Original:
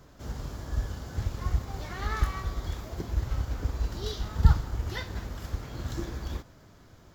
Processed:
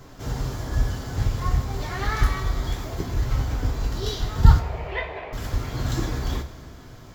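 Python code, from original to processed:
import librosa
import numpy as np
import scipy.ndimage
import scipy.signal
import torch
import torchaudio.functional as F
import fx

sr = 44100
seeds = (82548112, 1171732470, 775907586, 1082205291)

y = fx.cabinet(x, sr, low_hz=400.0, low_slope=24, high_hz=2700.0, hz=(430.0, 630.0, 950.0, 1400.0, 2400.0), db=(4, 9, 3, -9, 9), at=(4.59, 5.33))
y = fx.rev_double_slope(y, sr, seeds[0], early_s=0.23, late_s=1.8, knee_db=-18, drr_db=1.5)
y = fx.rider(y, sr, range_db=3, speed_s=2.0)
y = y * 10.0 ** (4.5 / 20.0)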